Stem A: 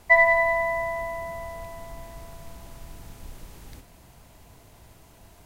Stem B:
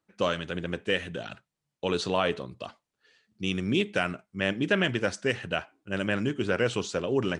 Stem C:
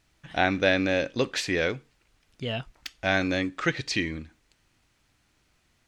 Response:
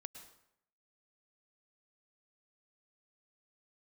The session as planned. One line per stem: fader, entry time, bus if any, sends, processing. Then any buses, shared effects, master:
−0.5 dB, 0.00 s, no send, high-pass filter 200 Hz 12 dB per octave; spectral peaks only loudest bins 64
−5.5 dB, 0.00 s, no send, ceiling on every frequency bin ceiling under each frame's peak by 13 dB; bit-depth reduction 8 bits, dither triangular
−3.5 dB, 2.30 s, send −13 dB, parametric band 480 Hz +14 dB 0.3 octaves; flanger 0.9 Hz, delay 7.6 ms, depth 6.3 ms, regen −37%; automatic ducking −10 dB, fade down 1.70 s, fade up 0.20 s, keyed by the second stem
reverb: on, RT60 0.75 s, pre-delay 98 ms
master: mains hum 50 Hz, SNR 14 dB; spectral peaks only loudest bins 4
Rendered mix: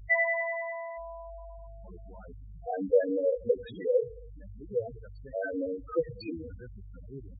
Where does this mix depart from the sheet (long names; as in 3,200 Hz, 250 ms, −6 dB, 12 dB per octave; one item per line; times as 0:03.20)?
stem A −0.5 dB → −8.0 dB
stem B −5.5 dB → −12.5 dB
stem C −3.5 dB → +5.5 dB